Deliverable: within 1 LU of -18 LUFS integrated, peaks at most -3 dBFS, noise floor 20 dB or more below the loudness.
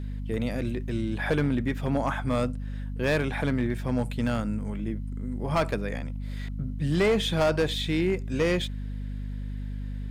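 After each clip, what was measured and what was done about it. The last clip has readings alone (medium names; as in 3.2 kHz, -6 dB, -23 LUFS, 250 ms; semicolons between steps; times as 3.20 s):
clipped samples 1.0%; clipping level -18.0 dBFS; hum 50 Hz; highest harmonic 250 Hz; hum level -31 dBFS; loudness -28.5 LUFS; peak level -18.0 dBFS; loudness target -18.0 LUFS
-> clip repair -18 dBFS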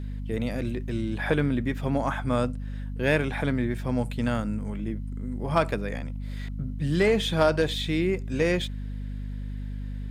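clipped samples 0.0%; hum 50 Hz; highest harmonic 250 Hz; hum level -31 dBFS
-> hum notches 50/100/150/200/250 Hz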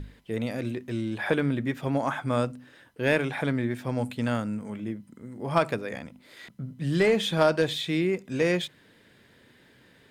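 hum not found; loudness -28.0 LUFS; peak level -8.5 dBFS; loudness target -18.0 LUFS
-> trim +10 dB; peak limiter -3 dBFS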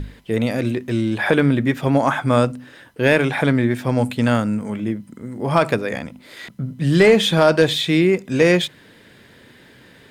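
loudness -18.5 LUFS; peak level -3.0 dBFS; noise floor -48 dBFS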